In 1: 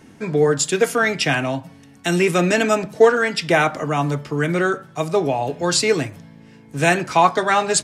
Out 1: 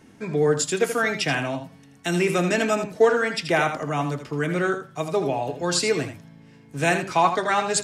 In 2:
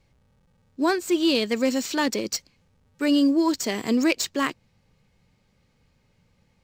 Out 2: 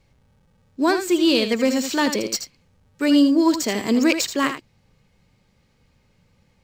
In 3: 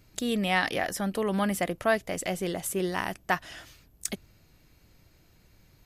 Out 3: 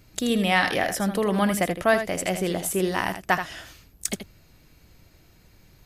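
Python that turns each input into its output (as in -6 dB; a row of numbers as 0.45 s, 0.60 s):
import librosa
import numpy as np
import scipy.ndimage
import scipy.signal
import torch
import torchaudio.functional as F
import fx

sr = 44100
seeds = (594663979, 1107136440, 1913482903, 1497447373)

y = x + 10.0 ** (-9.0 / 20.0) * np.pad(x, (int(80 * sr / 1000.0), 0))[:len(x)]
y = y * 10.0 ** (-6 / 20.0) / np.max(np.abs(y))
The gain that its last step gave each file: -5.0 dB, +3.0 dB, +4.5 dB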